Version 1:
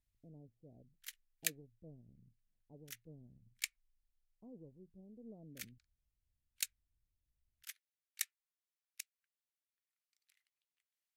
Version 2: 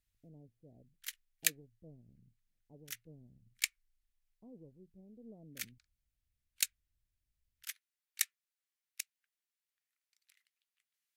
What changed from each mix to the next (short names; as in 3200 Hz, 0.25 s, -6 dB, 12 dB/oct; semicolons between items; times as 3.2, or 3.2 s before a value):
background +6.0 dB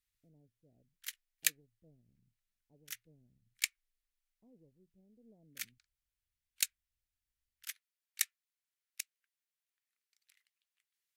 speech -9.5 dB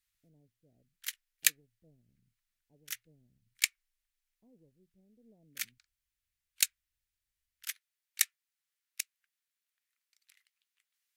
background +5.0 dB